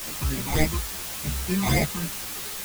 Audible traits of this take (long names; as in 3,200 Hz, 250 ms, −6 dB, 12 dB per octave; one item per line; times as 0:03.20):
aliases and images of a low sample rate 1,400 Hz, jitter 0%
phaser sweep stages 12, 3.5 Hz, lowest notch 510–1,200 Hz
a quantiser's noise floor 6 bits, dither triangular
a shimmering, thickened sound